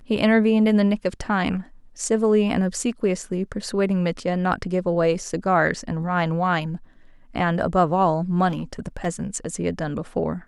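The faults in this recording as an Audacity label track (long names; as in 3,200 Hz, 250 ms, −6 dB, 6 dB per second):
8.480000	9.070000	clipping −22 dBFS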